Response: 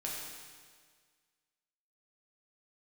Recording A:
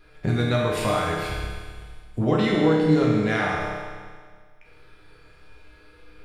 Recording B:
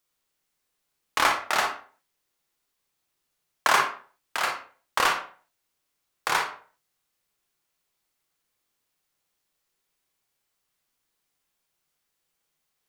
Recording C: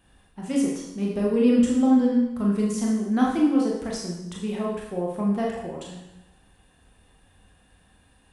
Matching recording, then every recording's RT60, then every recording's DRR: A; 1.7, 0.45, 0.90 s; -4.5, 1.5, -3.0 dB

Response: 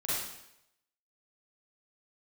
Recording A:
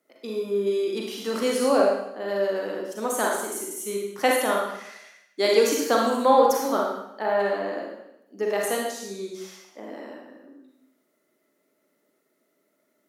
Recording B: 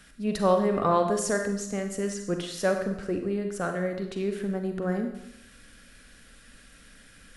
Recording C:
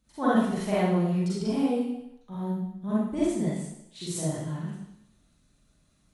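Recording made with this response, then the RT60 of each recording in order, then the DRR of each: C; 0.80, 0.80, 0.80 s; -1.5, 4.5, -10.0 dB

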